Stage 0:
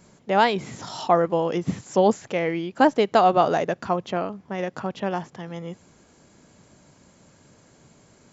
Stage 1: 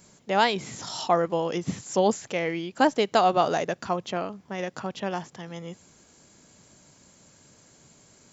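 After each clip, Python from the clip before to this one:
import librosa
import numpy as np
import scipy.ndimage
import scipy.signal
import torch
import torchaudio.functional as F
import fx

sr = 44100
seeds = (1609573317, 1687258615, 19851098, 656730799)

y = fx.high_shelf(x, sr, hz=3300.0, db=10.5)
y = F.gain(torch.from_numpy(y), -4.0).numpy()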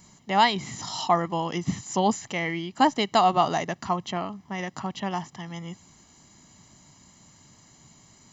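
y = x + 0.63 * np.pad(x, (int(1.0 * sr / 1000.0), 0))[:len(x)]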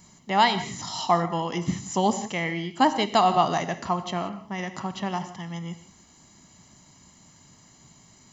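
y = fx.rev_gated(x, sr, seeds[0], gate_ms=200, shape='flat', drr_db=10.0)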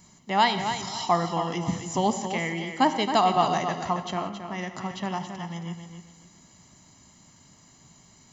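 y = fx.echo_feedback(x, sr, ms=272, feedback_pct=27, wet_db=-8.5)
y = F.gain(torch.from_numpy(y), -1.5).numpy()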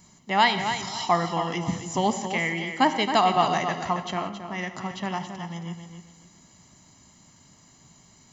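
y = fx.dynamic_eq(x, sr, hz=2100.0, q=1.3, threshold_db=-41.0, ratio=4.0, max_db=5)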